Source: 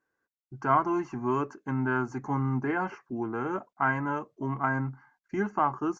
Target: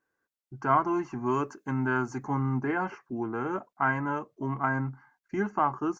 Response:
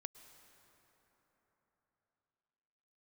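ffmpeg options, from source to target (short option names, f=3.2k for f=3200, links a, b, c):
-filter_complex "[0:a]asettb=1/sr,asplit=3[a][b][c];[a]atrim=end=1.264[d];[b]atrim=start=1.26:end=2.24,asetpts=PTS-STARTPTS,afade=t=in:d=0.004:c=qsin,afade=t=out:st=0.976:d=0.004:c=qsin,highshelf=f=4.7k:g=9.5[e];[c]atrim=start=2.236[f];[d][e]acrossfade=d=0.004:c1=hsin:c2=qsin[g];[g][f]acrossfade=d=0.004:c1=qsin:c2=hsin"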